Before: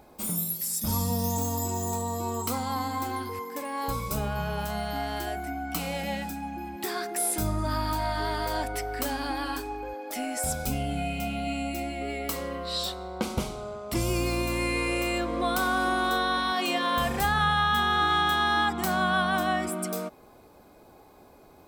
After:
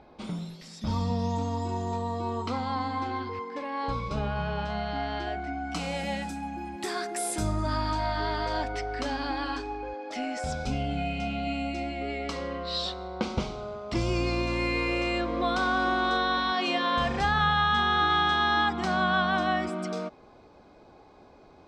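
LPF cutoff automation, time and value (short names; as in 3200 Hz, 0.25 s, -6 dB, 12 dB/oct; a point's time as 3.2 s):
LPF 24 dB/oct
5.37 s 4400 Hz
6.03 s 9200 Hz
7.31 s 9200 Hz
8.17 s 5600 Hz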